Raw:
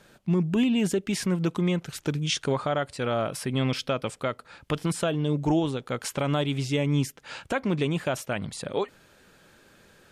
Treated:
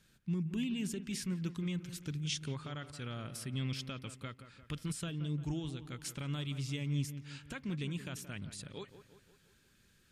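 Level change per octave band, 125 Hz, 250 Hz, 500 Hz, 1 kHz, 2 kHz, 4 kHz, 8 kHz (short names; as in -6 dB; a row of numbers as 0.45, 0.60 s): -9.0, -12.5, -20.5, -19.5, -13.0, -10.0, -8.5 dB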